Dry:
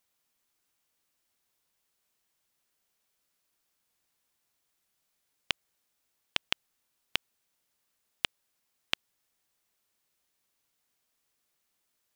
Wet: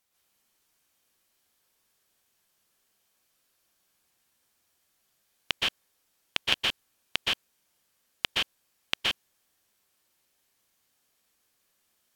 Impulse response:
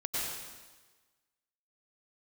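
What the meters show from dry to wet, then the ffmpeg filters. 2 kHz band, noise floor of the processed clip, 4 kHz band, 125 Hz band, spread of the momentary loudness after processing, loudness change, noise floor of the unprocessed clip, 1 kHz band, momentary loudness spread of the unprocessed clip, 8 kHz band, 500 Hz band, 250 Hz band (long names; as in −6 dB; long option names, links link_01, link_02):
+6.0 dB, −74 dBFS, +7.0 dB, +6.5 dB, 8 LU, +5.5 dB, −79 dBFS, +6.0 dB, 3 LU, +6.0 dB, +7.0 dB, +7.0 dB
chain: -filter_complex "[1:a]atrim=start_sample=2205,atrim=end_sample=6174,asetrate=34839,aresample=44100[link_01];[0:a][link_01]afir=irnorm=-1:irlink=0,volume=2dB"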